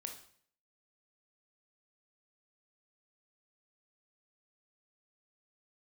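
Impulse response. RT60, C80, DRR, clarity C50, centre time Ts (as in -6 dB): 0.55 s, 12.0 dB, 4.0 dB, 7.5 dB, 18 ms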